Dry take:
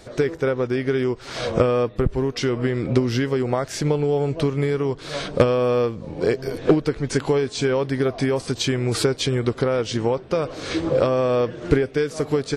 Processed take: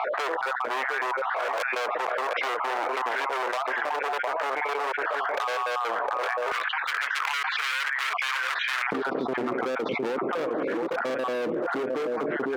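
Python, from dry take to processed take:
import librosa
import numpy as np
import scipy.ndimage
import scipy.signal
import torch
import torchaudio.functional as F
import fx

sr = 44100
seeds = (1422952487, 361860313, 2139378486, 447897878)

y = fx.spec_dropout(x, sr, seeds[0], share_pct=33)
y = scipy.signal.sosfilt(scipy.signal.butter(4, 1700.0, 'lowpass', fs=sr, output='sos'), y)
y = y + 10.0 ** (-10.5 / 20.0) * np.pad(y, (int(709 * sr / 1000.0), 0))[:len(y)]
y = np.clip(y, -10.0 ** (-27.5 / 20.0), 10.0 ** (-27.5 / 20.0))
y = fx.rider(y, sr, range_db=10, speed_s=0.5)
y = fx.highpass(y, sr, hz=fx.steps((0.0, 660.0), (6.52, 1500.0), (8.92, 230.0)), slope=24)
y = fx.env_flatten(y, sr, amount_pct=100)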